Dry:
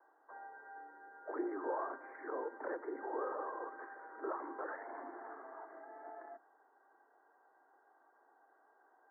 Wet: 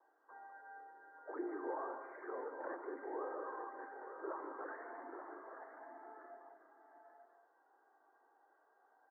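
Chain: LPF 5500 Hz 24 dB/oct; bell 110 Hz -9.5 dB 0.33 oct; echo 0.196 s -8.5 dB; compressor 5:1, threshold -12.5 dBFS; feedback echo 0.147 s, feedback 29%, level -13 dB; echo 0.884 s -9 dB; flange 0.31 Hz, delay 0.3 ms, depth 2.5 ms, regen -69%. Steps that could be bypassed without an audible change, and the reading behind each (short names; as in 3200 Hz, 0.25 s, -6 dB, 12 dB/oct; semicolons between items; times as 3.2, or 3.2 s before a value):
LPF 5500 Hz: input band ends at 2000 Hz; bell 110 Hz: input band starts at 230 Hz; compressor, threshold -12.5 dBFS: input peak -26.0 dBFS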